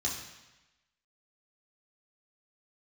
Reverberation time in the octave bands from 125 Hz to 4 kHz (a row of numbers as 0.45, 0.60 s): 1.0, 1.0, 1.0, 1.1, 1.1, 1.1 s